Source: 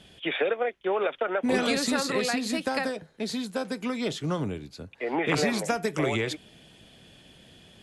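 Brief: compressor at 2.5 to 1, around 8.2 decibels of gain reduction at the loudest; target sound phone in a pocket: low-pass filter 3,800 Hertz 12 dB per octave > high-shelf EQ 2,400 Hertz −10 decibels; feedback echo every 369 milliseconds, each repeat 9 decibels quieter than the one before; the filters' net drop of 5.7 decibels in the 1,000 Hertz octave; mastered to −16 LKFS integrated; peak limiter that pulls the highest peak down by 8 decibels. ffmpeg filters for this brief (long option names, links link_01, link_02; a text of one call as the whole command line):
ffmpeg -i in.wav -af "equalizer=frequency=1000:width_type=o:gain=-6.5,acompressor=threshold=-35dB:ratio=2.5,alimiter=level_in=5.5dB:limit=-24dB:level=0:latency=1,volume=-5.5dB,lowpass=3800,highshelf=frequency=2400:gain=-10,aecho=1:1:369|738|1107|1476:0.355|0.124|0.0435|0.0152,volume=24dB" out.wav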